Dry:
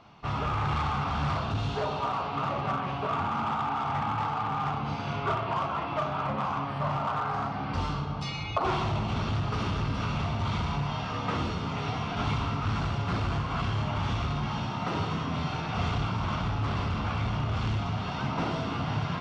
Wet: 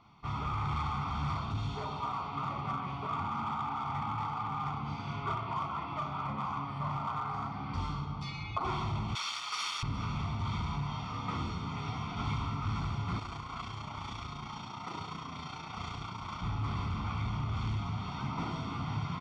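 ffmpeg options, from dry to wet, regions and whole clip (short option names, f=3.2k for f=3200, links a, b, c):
-filter_complex "[0:a]asettb=1/sr,asplit=3[a][b][c];[a]atrim=end=9.154[d];[b]atrim=start=9.15:end=9.83,asetpts=PTS-STARTPTS,afade=t=in:d=0.004:c=qsin,afade=t=out:st=0.676:d=0.004:c=qsin,highpass=1.4k,aemphasis=mode=production:type=75fm,acontrast=77[e];[c]atrim=start=9.826[f];[d][e]acrossfade=d=0.004:c1=hsin:c2=qsin[g];[g][f]acrossfade=d=0.004:c1=qsin:c2=hsin,asettb=1/sr,asplit=3[h][i][j];[h]atrim=end=13.194[k];[i]atrim=start=13.19:end=16.42,asetpts=PTS-STARTPTS,afade=t=in:d=0.004:c=qsin,afade=t=out:st=3.226:d=0.004:c=qsin,tremolo=f=29:d=0.519,bass=f=250:g=-8,treble=f=4k:g=4[l];[j]atrim=start=16.416[m];[k][l]acrossfade=d=0.004:c1=hsin:c2=qsin[n];[n][m]acrossfade=d=0.004:c1=qsin:c2=hsin,bandreject=f=1.6k:w=13,aecho=1:1:0.9:0.57,volume=-8dB"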